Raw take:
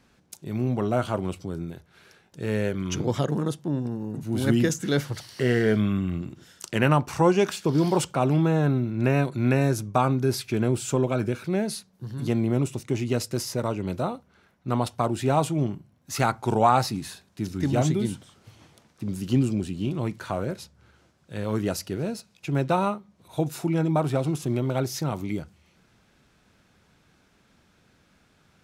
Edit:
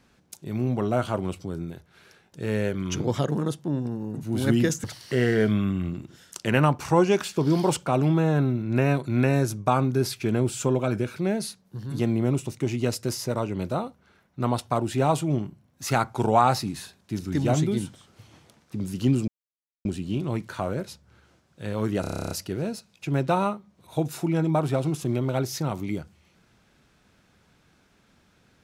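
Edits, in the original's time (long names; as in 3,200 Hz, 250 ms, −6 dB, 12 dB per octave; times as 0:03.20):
0:04.84–0:05.12: remove
0:19.56: splice in silence 0.57 s
0:21.72: stutter 0.03 s, 11 plays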